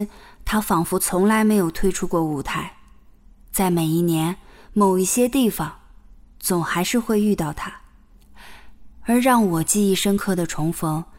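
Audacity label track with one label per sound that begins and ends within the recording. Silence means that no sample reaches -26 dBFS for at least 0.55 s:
3.540000	5.690000	sound
6.440000	7.690000	sound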